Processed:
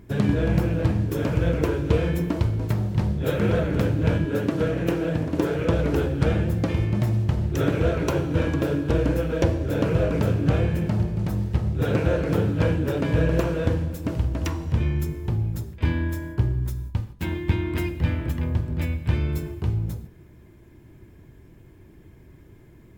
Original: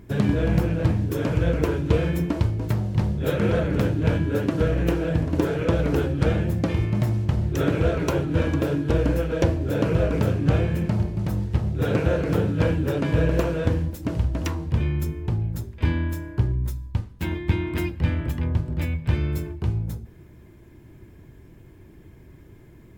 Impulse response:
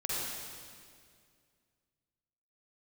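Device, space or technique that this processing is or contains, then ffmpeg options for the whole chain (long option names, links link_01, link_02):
keyed gated reverb: -filter_complex "[0:a]asplit=3[link_01][link_02][link_03];[1:a]atrim=start_sample=2205[link_04];[link_02][link_04]afir=irnorm=-1:irlink=0[link_05];[link_03]apad=whole_len=1013371[link_06];[link_05][link_06]sidechaingate=range=-33dB:threshold=-36dB:ratio=16:detection=peak,volume=-16.5dB[link_07];[link_01][link_07]amix=inputs=2:normalize=0,asettb=1/sr,asplit=3[link_08][link_09][link_10];[link_08]atrim=end=4.254[link_11];[link_09]atrim=start=4.25:end=5.51,asetpts=PTS-STARTPTS,afade=type=in:duration=0.004:curve=qsin,afade=type=out:start_time=1.256:duration=0.004:curve=qsin,highpass=110[link_12];[link_10]atrim=start=5.506[link_13];[link_11][link_12]acrossfade=duration=0.004:curve1=hsin:curve2=qsin[link_14];[link_14][link_13]acrossfade=duration=0.004:curve1=qsin:curve2=hsin,volume=-1.5dB"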